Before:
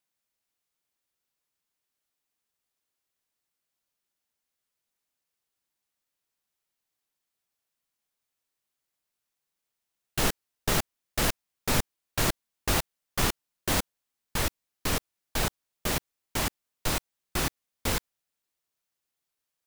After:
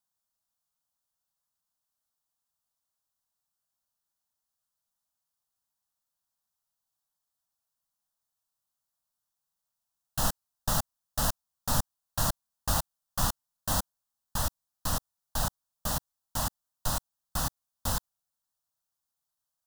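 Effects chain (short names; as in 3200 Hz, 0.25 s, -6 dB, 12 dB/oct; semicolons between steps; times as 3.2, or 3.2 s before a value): fixed phaser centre 940 Hz, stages 4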